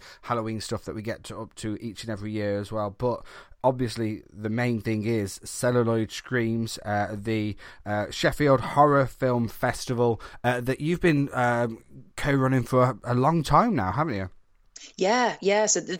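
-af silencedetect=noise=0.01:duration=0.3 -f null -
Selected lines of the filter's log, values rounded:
silence_start: 14.28
silence_end: 14.76 | silence_duration: 0.48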